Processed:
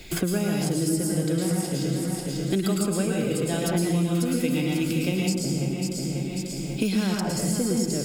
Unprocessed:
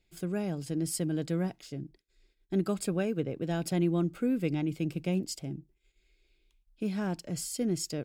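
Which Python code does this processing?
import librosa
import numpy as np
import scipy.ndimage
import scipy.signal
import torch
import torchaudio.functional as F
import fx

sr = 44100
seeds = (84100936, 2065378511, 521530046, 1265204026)

p1 = fx.high_shelf(x, sr, hz=5700.0, db=5.0)
p2 = fx.level_steps(p1, sr, step_db=23)
p3 = p1 + (p2 * librosa.db_to_amplitude(0.0))
p4 = fx.echo_feedback(p3, sr, ms=542, feedback_pct=28, wet_db=-10.5)
p5 = fx.rev_plate(p4, sr, seeds[0], rt60_s=0.8, hf_ratio=0.9, predelay_ms=95, drr_db=-2.5)
y = fx.band_squash(p5, sr, depth_pct=100)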